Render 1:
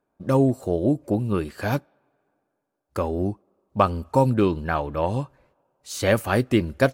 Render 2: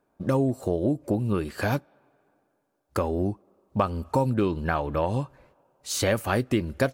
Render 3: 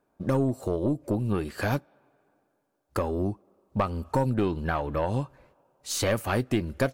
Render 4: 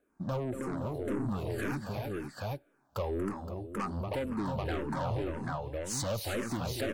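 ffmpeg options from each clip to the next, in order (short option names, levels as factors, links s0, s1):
-af "acompressor=threshold=0.0355:ratio=2.5,volume=1.68"
-af "aeval=exprs='(tanh(4.47*val(0)+0.35)-tanh(0.35))/4.47':c=same"
-filter_complex "[0:a]asplit=2[s0][s1];[s1]aecho=0:1:235|318|344|519|787:0.224|0.447|0.141|0.168|0.531[s2];[s0][s2]amix=inputs=2:normalize=0,asoftclip=type=tanh:threshold=0.0447,asplit=2[s3][s4];[s4]afreqshift=-1.9[s5];[s3][s5]amix=inputs=2:normalize=1"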